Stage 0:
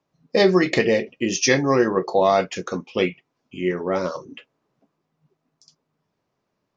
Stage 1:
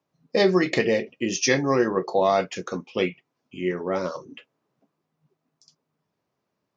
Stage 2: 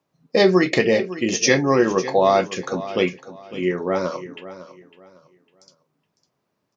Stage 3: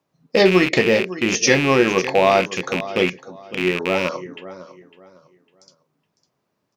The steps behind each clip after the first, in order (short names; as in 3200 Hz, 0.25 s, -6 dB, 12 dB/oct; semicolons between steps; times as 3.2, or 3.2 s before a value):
HPF 73 Hz; gain -3 dB
feedback echo 0.554 s, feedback 27%, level -15 dB; gain +4 dB
rattling part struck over -32 dBFS, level -12 dBFS; gain +1 dB